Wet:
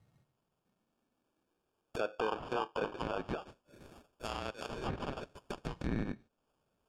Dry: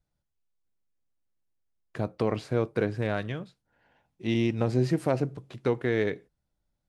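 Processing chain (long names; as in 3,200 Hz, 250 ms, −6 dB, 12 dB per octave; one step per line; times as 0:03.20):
high-pass filter sweep 110 Hz → 2,200 Hz, 0:00.07–0:03.99
downward compressor 2 to 1, threshold −50 dBFS, peak gain reduction 15.5 dB
0:02.20–0:03.02: comb filter 0.8 ms, depth 91%
brickwall limiter −33.5 dBFS, peak gain reduction 5 dB
decimation without filtering 22×
0:04.25–0:04.69: spectral tilt +2 dB per octave
treble cut that deepens with the level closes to 2,500 Hz, closed at −43.5 dBFS
level +11 dB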